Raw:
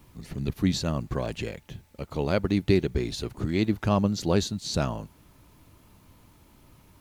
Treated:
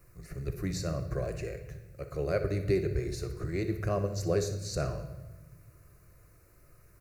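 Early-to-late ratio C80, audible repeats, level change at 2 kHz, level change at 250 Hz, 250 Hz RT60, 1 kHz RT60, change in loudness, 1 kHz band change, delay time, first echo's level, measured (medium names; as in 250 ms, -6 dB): 11.5 dB, 1, -6.0 dB, -10.0 dB, 1.7 s, 0.95 s, -6.0 dB, -8.0 dB, 61 ms, -14.0 dB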